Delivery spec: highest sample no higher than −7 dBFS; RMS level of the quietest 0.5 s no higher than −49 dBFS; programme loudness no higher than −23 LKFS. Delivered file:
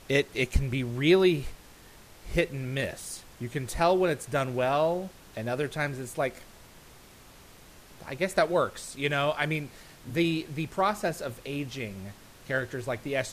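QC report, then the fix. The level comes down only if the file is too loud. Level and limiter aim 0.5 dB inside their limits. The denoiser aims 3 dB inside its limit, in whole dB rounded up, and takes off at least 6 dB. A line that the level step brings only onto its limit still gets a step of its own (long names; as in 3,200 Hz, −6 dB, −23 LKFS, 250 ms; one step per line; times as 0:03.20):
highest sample −10.5 dBFS: in spec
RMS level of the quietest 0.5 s −52 dBFS: in spec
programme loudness −29.0 LKFS: in spec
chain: no processing needed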